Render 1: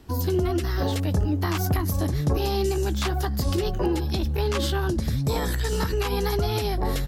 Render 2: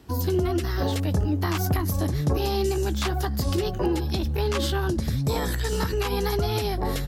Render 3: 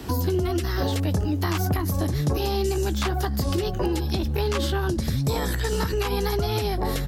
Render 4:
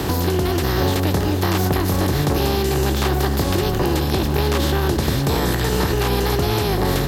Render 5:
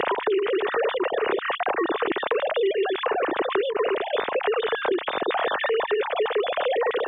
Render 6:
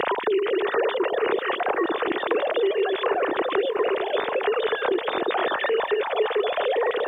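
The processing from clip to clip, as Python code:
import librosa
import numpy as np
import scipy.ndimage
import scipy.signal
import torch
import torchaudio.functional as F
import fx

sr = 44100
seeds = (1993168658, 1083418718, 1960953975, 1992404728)

y1 = scipy.signal.sosfilt(scipy.signal.butter(2, 49.0, 'highpass', fs=sr, output='sos'), x)
y2 = fx.band_squash(y1, sr, depth_pct=70)
y3 = fx.bin_compress(y2, sr, power=0.4)
y3 = y3 + 10.0 ** (-11.5 / 20.0) * np.pad(y3, (int(488 * sr / 1000.0), 0))[:len(y3)]
y4 = fx.sine_speech(y3, sr)
y4 = fx.band_squash(y4, sr, depth_pct=100)
y4 = y4 * 10.0 ** (-6.5 / 20.0)
y5 = fx.echo_stepped(y4, sr, ms=234, hz=270.0, octaves=0.7, feedback_pct=70, wet_db=-6.0)
y5 = fx.quant_dither(y5, sr, seeds[0], bits=12, dither='triangular')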